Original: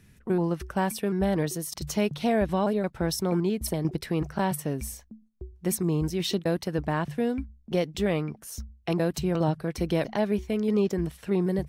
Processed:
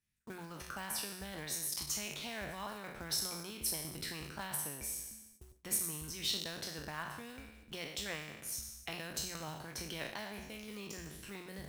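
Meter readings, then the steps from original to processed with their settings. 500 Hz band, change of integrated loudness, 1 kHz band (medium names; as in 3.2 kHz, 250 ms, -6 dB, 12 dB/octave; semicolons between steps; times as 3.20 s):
-21.0 dB, -12.0 dB, -14.0 dB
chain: spectral sustain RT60 0.99 s; dynamic bell 1.2 kHz, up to +3 dB, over -42 dBFS, Q 1.1; hum notches 60/120/180 Hz; in parallel at -0.5 dB: compression 6:1, threshold -33 dBFS, peak gain reduction 13.5 dB; on the sum: amplifier tone stack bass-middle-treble 5-5-5; short-mantissa float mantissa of 2-bit; harmonic-percussive split harmonic -8 dB; gate with hold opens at -49 dBFS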